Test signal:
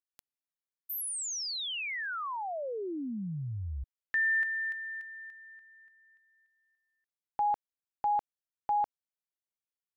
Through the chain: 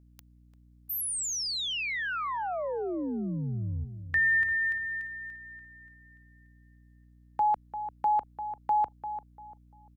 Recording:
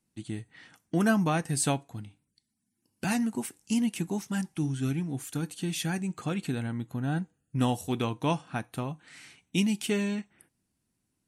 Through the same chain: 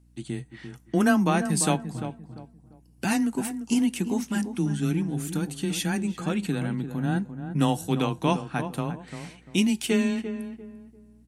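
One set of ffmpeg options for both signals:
-filter_complex "[0:a]afreqshift=15,asplit=2[a][b];[b]adelay=345,lowpass=f=1.2k:p=1,volume=-9dB,asplit=2[c][d];[d]adelay=345,lowpass=f=1.2k:p=1,volume=0.31,asplit=2[e][f];[f]adelay=345,lowpass=f=1.2k:p=1,volume=0.31,asplit=2[g][h];[h]adelay=345,lowpass=f=1.2k:p=1,volume=0.31[i];[a][c][e][g][i]amix=inputs=5:normalize=0,aeval=exprs='val(0)+0.001*(sin(2*PI*60*n/s)+sin(2*PI*2*60*n/s)/2+sin(2*PI*3*60*n/s)/3+sin(2*PI*4*60*n/s)/4+sin(2*PI*5*60*n/s)/5)':c=same,volume=3.5dB"

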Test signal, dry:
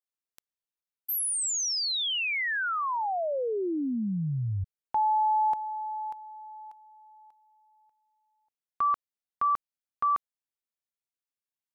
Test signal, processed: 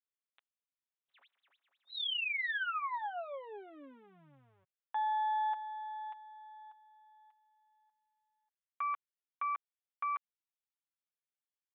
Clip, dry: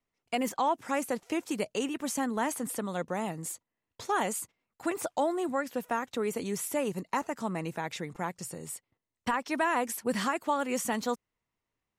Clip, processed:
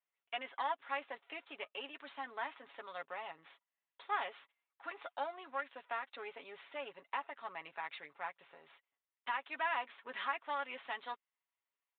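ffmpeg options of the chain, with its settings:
-af "aeval=exprs='if(lt(val(0),0),0.447*val(0),val(0))':c=same,highpass=890,aecho=1:1:7.2:0.58,aresample=8000,aresample=44100,volume=-4.5dB"

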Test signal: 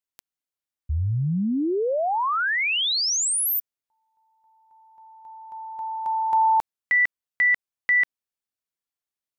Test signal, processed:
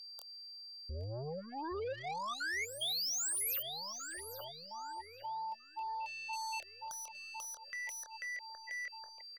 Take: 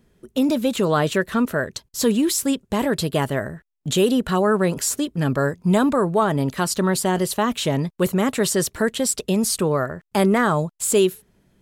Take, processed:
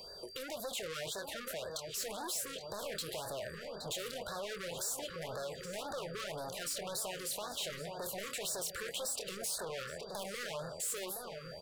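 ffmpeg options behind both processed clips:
-filter_complex "[0:a]asplit=2[a][b];[b]adelay=25,volume=-10dB[c];[a][c]amix=inputs=2:normalize=0,aeval=exprs='(tanh(25.1*val(0)+0.05)-tanh(0.05))/25.1':c=same,lowshelf=f=380:t=q:w=3:g=-13,acrossover=split=270|1900[d][e][f];[e]acompressor=threshold=-40dB:ratio=4:attack=8.3:release=267:knee=2.83:detection=peak[g];[d][g][f]amix=inputs=3:normalize=0,asplit=2[h][i];[i]adelay=819,lowpass=f=1.6k:p=1,volume=-8dB,asplit=2[j][k];[k]adelay=819,lowpass=f=1.6k:p=1,volume=0.55,asplit=2[l][m];[m]adelay=819,lowpass=f=1.6k:p=1,volume=0.55,asplit=2[n][o];[o]adelay=819,lowpass=f=1.6k:p=1,volume=0.55,asplit=2[p][q];[q]adelay=819,lowpass=f=1.6k:p=1,volume=0.55,asplit=2[r][s];[s]adelay=819,lowpass=f=1.6k:p=1,volume=0.55,asplit=2[t][u];[u]adelay=819,lowpass=f=1.6k:p=1,volume=0.55[v];[h][j][l][n][p][r][t][v]amix=inputs=8:normalize=0,aeval=exprs='val(0)+0.00112*sin(2*PI*4700*n/s)':c=same,acompressor=threshold=-55dB:ratio=2.5:attack=0.76:release=126:knee=6:detection=peak,afftfilt=real='re*(1-between(b*sr/1024,750*pow(2600/750,0.5+0.5*sin(2*PI*1.9*pts/sr))/1.41,750*pow(2600/750,0.5+0.5*sin(2*PI*1.9*pts/sr))*1.41))':imag='im*(1-between(b*sr/1024,750*pow(2600/750,0.5+0.5*sin(2*PI*1.9*pts/sr))/1.41,750*pow(2600/750,0.5+0.5*sin(2*PI*1.9*pts/sr))*1.41))':win_size=1024:overlap=0.75,volume=11.5dB"

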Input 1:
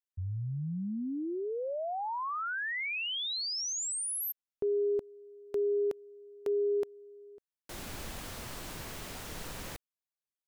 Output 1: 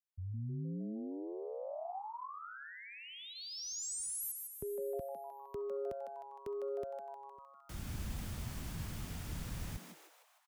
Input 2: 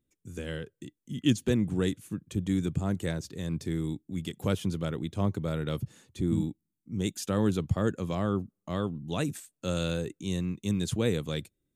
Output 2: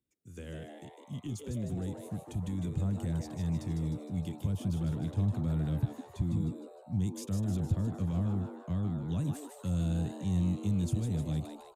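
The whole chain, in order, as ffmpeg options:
-filter_complex "[0:a]highpass=f=67:p=1,bandreject=f=4k:w=24,acrossover=split=280|810|5500[a][b][c][d];[c]acompressor=threshold=-48dB:ratio=6:attack=22:release=70:detection=rms[e];[d]acrusher=bits=6:mode=log:mix=0:aa=0.000001[f];[a][b][e][f]amix=inputs=4:normalize=0,alimiter=level_in=1.5dB:limit=-24dB:level=0:latency=1:release=45,volume=-1.5dB,asplit=9[g][h][i][j][k][l][m][n][o];[h]adelay=154,afreqshift=140,volume=-5dB[p];[i]adelay=308,afreqshift=280,volume=-9.9dB[q];[j]adelay=462,afreqshift=420,volume=-14.8dB[r];[k]adelay=616,afreqshift=560,volume=-19.6dB[s];[l]adelay=770,afreqshift=700,volume=-24.5dB[t];[m]adelay=924,afreqshift=840,volume=-29.4dB[u];[n]adelay=1078,afreqshift=980,volume=-34.3dB[v];[o]adelay=1232,afreqshift=1120,volume=-39.2dB[w];[g][p][q][r][s][t][u][v][w]amix=inputs=9:normalize=0,asubboost=boost=8.5:cutoff=150,volume=-7dB"

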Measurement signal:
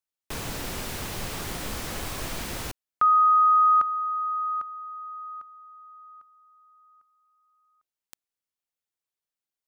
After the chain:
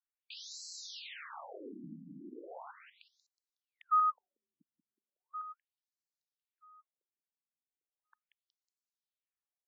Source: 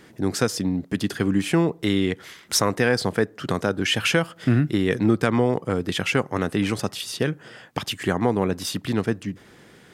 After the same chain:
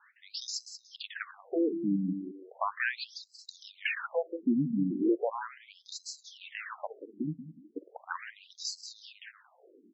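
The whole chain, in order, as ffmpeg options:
-af "aecho=1:1:184|368|552:0.316|0.098|0.0304,afftfilt=real='re*between(b*sr/1024,210*pow(5700/210,0.5+0.5*sin(2*PI*0.37*pts/sr))/1.41,210*pow(5700/210,0.5+0.5*sin(2*PI*0.37*pts/sr))*1.41)':imag='im*between(b*sr/1024,210*pow(5700/210,0.5+0.5*sin(2*PI*0.37*pts/sr))/1.41,210*pow(5700/210,0.5+0.5*sin(2*PI*0.37*pts/sr))*1.41)':win_size=1024:overlap=0.75,volume=-4.5dB"

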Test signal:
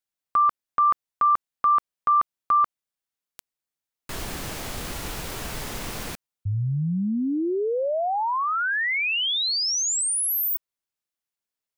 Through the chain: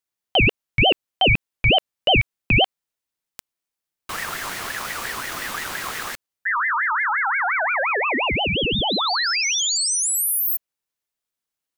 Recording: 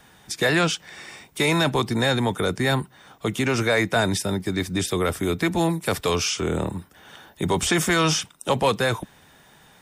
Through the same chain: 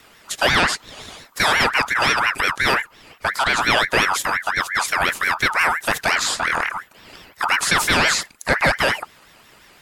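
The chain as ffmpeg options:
-af "aeval=exprs='val(0)*sin(2*PI*1500*n/s+1500*0.3/5.7*sin(2*PI*5.7*n/s))':c=same,volume=6dB"

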